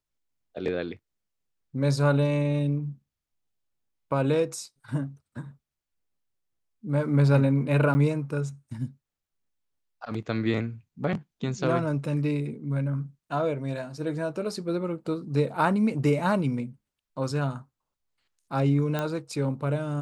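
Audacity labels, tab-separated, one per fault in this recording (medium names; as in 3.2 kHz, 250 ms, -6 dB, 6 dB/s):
7.940000	7.950000	dropout 10 ms
18.990000	18.990000	pop -15 dBFS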